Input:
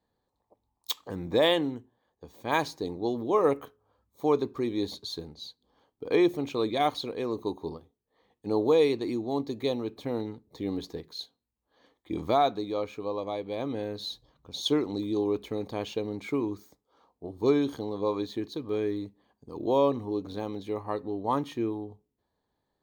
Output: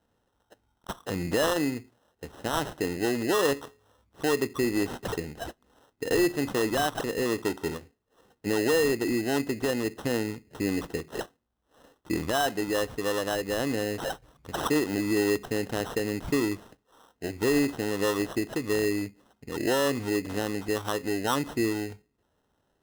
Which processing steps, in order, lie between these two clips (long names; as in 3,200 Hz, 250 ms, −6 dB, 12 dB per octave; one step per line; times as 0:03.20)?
in parallel at +1 dB: downward compressor, threshold −34 dBFS, peak gain reduction 15 dB
on the sum: brickwall limiter −16 dBFS, peak gain reduction 7 dB
sample-rate reduction 2,300 Hz, jitter 0%